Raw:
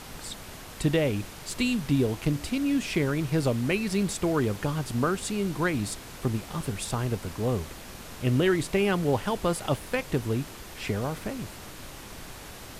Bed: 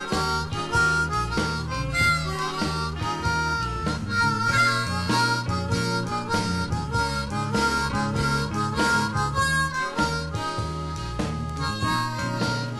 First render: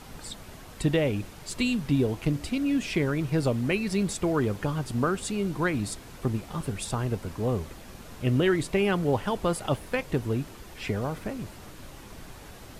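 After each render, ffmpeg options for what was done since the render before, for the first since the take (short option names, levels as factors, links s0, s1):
-af "afftdn=nr=6:nf=-43"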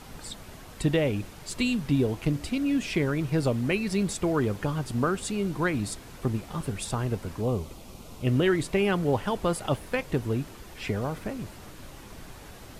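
-filter_complex "[0:a]asettb=1/sr,asplit=3[s0][s1][s2];[s0]atrim=end=7.414[s3];[s1]atrim=start=7.41:end=8.27,asetpts=PTS-STARTPTS,afade=t=in:d=0.004:c=qsin,afade=t=out:st=0.856:d=0.004:c=qsin,equalizer=f=1700:t=o:w=0.4:g=-15[s4];[s2]atrim=start=8.266[s5];[s3][s4]acrossfade=d=0.004:c1=hsin:c2=qsin[s6];[s6][s5]acrossfade=d=0.004:c1=qsin:c2=hsin"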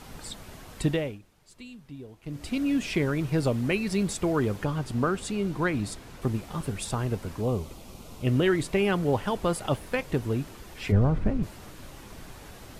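-filter_complex "[0:a]asettb=1/sr,asplit=3[s0][s1][s2];[s0]atrim=end=4.644[s3];[s1]atrim=start=4.64:end=6.22,asetpts=PTS-STARTPTS,afade=t=in:d=0.004:c=qsin,afade=t=out:st=1.576:d=0.004:c=qsin,highshelf=f=6800:g=-5.5[s4];[s2]atrim=start=6.216[s5];[s3][s4]acrossfade=d=0.004:c1=hsin:c2=qsin[s6];[s6][s5]acrossfade=d=0.004:c1=qsin:c2=hsin,asplit=3[s7][s8][s9];[s7]afade=t=out:st=10.91:d=0.02[s10];[s8]aemphasis=mode=reproduction:type=riaa,afade=t=in:st=10.91:d=0.02,afade=t=out:st=11.42:d=0.02[s11];[s9]afade=t=in:st=11.42:d=0.02[s12];[s10][s11][s12]amix=inputs=3:normalize=0,asplit=3[s13][s14][s15];[s13]atrim=end=1.19,asetpts=PTS-STARTPTS,afade=t=out:st=0.85:d=0.34:silence=0.11885[s16];[s14]atrim=start=1.19:end=2.23,asetpts=PTS-STARTPTS,volume=0.119[s17];[s15]atrim=start=2.23,asetpts=PTS-STARTPTS,afade=t=in:d=0.34:silence=0.11885[s18];[s16][s17][s18]concat=n=3:v=0:a=1"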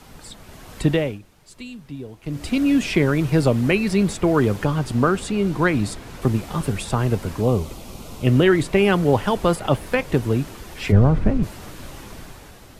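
-filter_complex "[0:a]acrossover=split=160|3200[s0][s1][s2];[s2]alimiter=level_in=2.51:limit=0.0631:level=0:latency=1:release=226,volume=0.398[s3];[s0][s1][s3]amix=inputs=3:normalize=0,dynaudnorm=f=110:g=13:m=2.66"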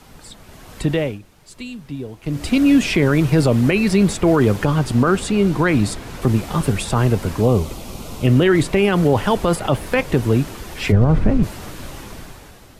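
-af "alimiter=limit=0.299:level=0:latency=1:release=30,dynaudnorm=f=480:g=5:m=1.78"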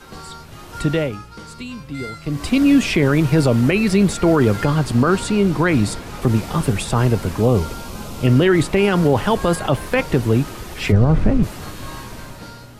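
-filter_complex "[1:a]volume=0.237[s0];[0:a][s0]amix=inputs=2:normalize=0"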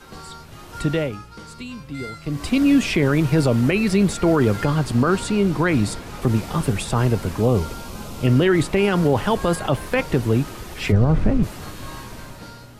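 -af "volume=0.75"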